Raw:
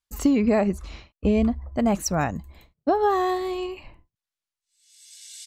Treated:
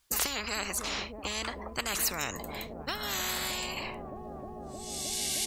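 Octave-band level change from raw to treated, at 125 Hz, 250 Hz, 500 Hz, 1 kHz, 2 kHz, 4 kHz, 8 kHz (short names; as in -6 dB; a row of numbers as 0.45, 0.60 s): -13.0, -19.0, -15.0, -10.5, +1.0, +7.5, +4.5 dB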